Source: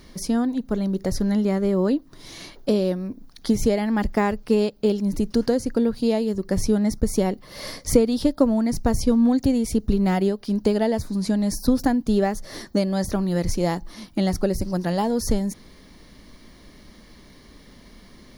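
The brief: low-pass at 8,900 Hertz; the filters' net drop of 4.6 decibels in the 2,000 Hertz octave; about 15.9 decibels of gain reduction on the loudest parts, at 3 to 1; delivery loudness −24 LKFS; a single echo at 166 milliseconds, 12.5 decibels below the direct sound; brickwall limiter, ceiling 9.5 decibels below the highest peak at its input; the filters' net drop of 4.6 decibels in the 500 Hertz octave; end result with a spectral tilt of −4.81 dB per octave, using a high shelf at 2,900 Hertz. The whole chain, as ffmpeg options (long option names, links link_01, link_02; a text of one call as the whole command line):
ffmpeg -i in.wav -af "lowpass=8900,equalizer=frequency=500:width_type=o:gain=-5.5,equalizer=frequency=2000:width_type=o:gain=-8,highshelf=frequency=2900:gain=7.5,acompressor=threshold=-38dB:ratio=3,alimiter=level_in=7.5dB:limit=-24dB:level=0:latency=1,volume=-7.5dB,aecho=1:1:166:0.237,volume=16.5dB" out.wav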